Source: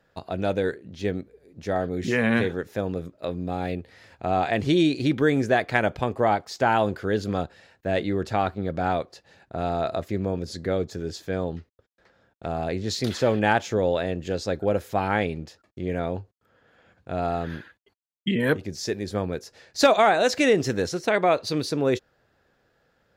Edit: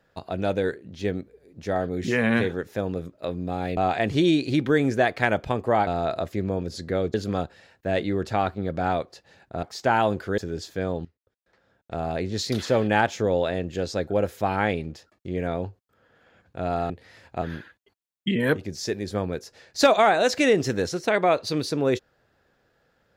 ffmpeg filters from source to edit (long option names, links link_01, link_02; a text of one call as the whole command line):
ffmpeg -i in.wav -filter_complex "[0:a]asplit=9[link_01][link_02][link_03][link_04][link_05][link_06][link_07][link_08][link_09];[link_01]atrim=end=3.772[link_10];[link_02]atrim=start=4.288:end=6.392[link_11];[link_03]atrim=start=9.628:end=10.902[link_12];[link_04]atrim=start=7.138:end=9.632[link_13];[link_05]atrim=start=6.388:end=7.142[link_14];[link_06]atrim=start=10.898:end=11.57,asetpts=PTS-STARTPTS,afade=type=out:start_time=0.668:duration=0.004:curve=hsin:silence=0.133352[link_15];[link_07]atrim=start=11.57:end=17.422,asetpts=PTS-STARTPTS,afade=type=in:duration=0.97:silence=0.133352[link_16];[link_08]atrim=start=3.768:end=4.292[link_17];[link_09]atrim=start=17.418[link_18];[link_10][link_11]acrossfade=duration=0.004:curve1=hsin:curve2=hsin[link_19];[link_19][link_12]acrossfade=duration=0.004:curve1=hsin:curve2=hsin[link_20];[link_20][link_13]acrossfade=duration=0.004:curve1=hsin:curve2=hsin[link_21];[link_21][link_14]acrossfade=duration=0.004:curve1=hsin:curve2=hsin[link_22];[link_15][link_16]concat=n=2:v=0:a=1[link_23];[link_22][link_23]acrossfade=duration=0.004:curve1=hsin:curve2=hsin[link_24];[link_24][link_17]acrossfade=duration=0.004:curve1=hsin:curve2=hsin[link_25];[link_25][link_18]acrossfade=duration=0.004:curve1=hsin:curve2=hsin" out.wav